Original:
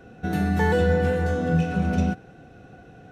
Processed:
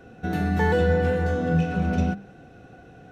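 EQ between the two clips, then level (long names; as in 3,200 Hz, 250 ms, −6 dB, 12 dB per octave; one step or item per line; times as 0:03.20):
mains-hum notches 50/100/150/200 Hz
dynamic equaliser 9,900 Hz, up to −6 dB, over −56 dBFS, Q 0.79
0.0 dB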